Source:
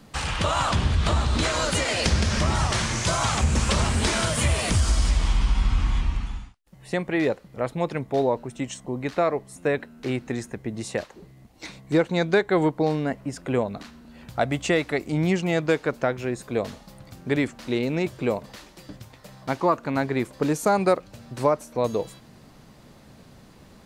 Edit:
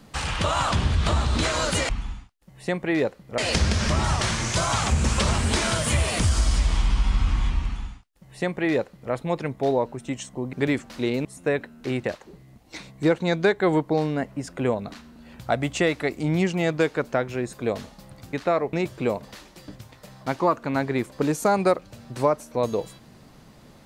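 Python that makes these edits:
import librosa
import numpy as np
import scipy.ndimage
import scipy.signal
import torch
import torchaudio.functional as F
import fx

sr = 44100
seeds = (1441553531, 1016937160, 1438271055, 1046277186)

y = fx.edit(x, sr, fx.duplicate(start_s=6.14, length_s=1.49, to_s=1.89),
    fx.swap(start_s=9.04, length_s=0.4, other_s=17.22, other_length_s=0.72),
    fx.cut(start_s=10.23, length_s=0.7), tone=tone)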